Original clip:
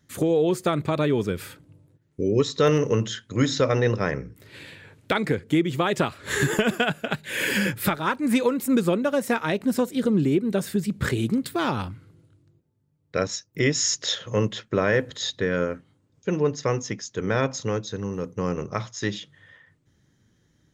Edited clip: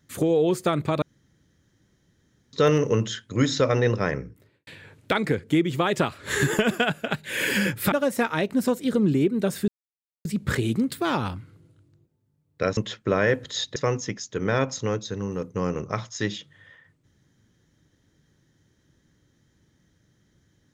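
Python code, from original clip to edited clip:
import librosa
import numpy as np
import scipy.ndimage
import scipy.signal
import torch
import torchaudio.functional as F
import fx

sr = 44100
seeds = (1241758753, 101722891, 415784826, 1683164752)

y = fx.studio_fade_out(x, sr, start_s=4.16, length_s=0.51)
y = fx.edit(y, sr, fx.room_tone_fill(start_s=1.02, length_s=1.51),
    fx.cut(start_s=7.92, length_s=1.11),
    fx.insert_silence(at_s=10.79, length_s=0.57),
    fx.cut(start_s=13.31, length_s=1.12),
    fx.cut(start_s=15.42, length_s=1.16), tone=tone)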